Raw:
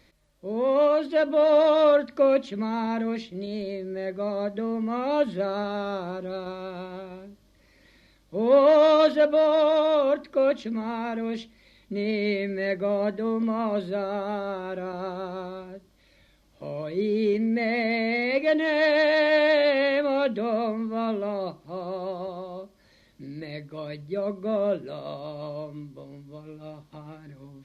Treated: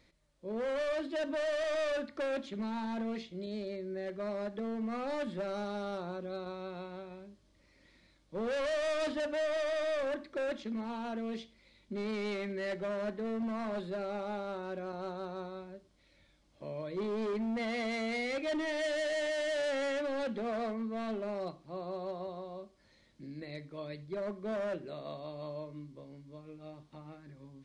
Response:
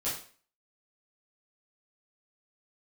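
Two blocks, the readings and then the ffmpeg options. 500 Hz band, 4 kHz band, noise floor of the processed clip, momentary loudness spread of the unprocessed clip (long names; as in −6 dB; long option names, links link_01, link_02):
−12.0 dB, −8.5 dB, −67 dBFS, 18 LU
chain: -filter_complex "[0:a]asoftclip=type=hard:threshold=-25dB,asplit=2[link_01][link_02];[1:a]atrim=start_sample=2205,atrim=end_sample=3087,asetrate=26460,aresample=44100[link_03];[link_02][link_03]afir=irnorm=-1:irlink=0,volume=-24.5dB[link_04];[link_01][link_04]amix=inputs=2:normalize=0,aresample=22050,aresample=44100,volume=-7.5dB"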